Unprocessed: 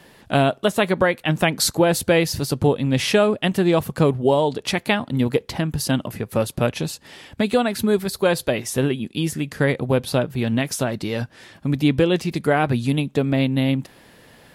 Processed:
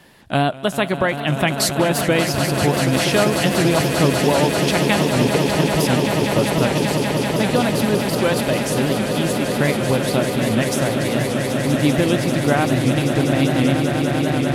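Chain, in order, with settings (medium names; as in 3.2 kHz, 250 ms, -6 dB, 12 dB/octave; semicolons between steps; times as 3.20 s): peaking EQ 460 Hz -4 dB 0.46 oct; echo with a slow build-up 195 ms, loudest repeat 8, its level -9.5 dB; warped record 78 rpm, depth 100 cents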